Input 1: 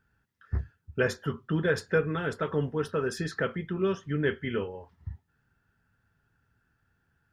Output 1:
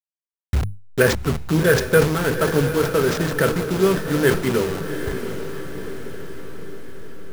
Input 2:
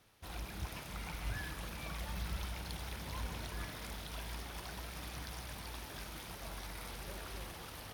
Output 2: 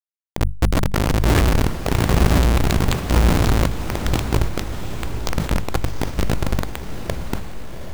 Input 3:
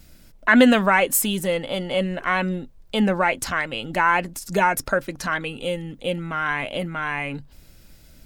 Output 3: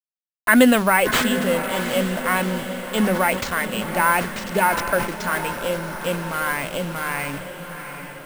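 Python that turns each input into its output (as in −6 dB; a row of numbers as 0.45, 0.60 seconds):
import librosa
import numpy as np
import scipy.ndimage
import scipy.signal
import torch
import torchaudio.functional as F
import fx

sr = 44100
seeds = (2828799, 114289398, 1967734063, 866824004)

y = fx.delta_hold(x, sr, step_db=-33.0)
y = fx.hum_notches(y, sr, base_hz=50, count=4)
y = np.repeat(y[::4], 4)[:len(y)]
y = fx.echo_diffused(y, sr, ms=751, feedback_pct=56, wet_db=-9.0)
y = fx.sustainer(y, sr, db_per_s=99.0)
y = librosa.util.normalize(y) * 10.0 ** (-3 / 20.0)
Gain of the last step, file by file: +10.0, +24.0, +0.5 decibels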